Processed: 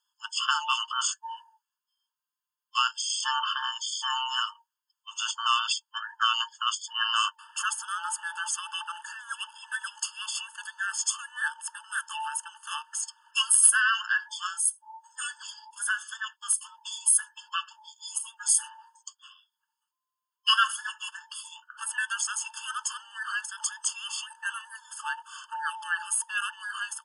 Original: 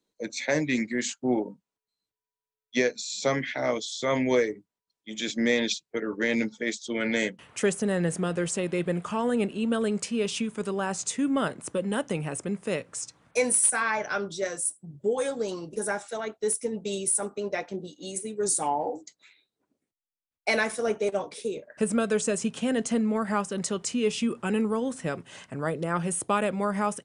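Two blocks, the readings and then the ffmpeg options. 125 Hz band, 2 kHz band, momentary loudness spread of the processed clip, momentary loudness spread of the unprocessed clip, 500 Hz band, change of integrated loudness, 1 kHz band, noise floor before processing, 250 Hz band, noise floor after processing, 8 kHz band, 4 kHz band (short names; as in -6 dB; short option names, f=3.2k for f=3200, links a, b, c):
under -40 dB, +2.5 dB, 14 LU, 8 LU, under -40 dB, 0.0 dB, +2.0 dB, under -85 dBFS, under -40 dB, under -85 dBFS, +3.5 dB, +8.0 dB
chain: -af "afftfilt=real='real(if(between(b,1,1008),(2*floor((b-1)/48)+1)*48-b,b),0)':imag='imag(if(between(b,1,1008),(2*floor((b-1)/48)+1)*48-b,b),0)*if(between(b,1,1008),-1,1)':win_size=2048:overlap=0.75,afftfilt=real='re*eq(mod(floor(b*sr/1024/890),2),1)':imag='im*eq(mod(floor(b*sr/1024/890),2),1)':win_size=1024:overlap=0.75,volume=6dB"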